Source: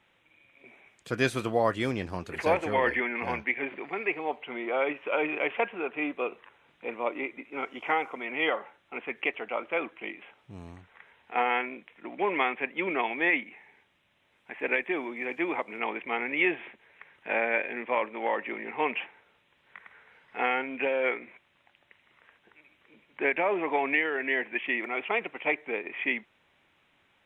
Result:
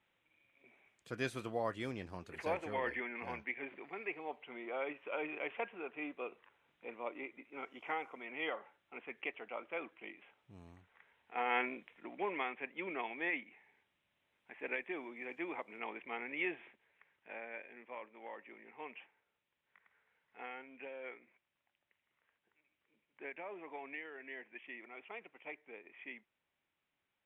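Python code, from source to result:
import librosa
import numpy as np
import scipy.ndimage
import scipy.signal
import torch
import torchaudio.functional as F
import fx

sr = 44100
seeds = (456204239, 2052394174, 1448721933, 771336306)

y = fx.gain(x, sr, db=fx.line((11.36, -12.0), (11.64, -3.0), (12.41, -12.0), (16.48, -12.0), (17.39, -20.0)))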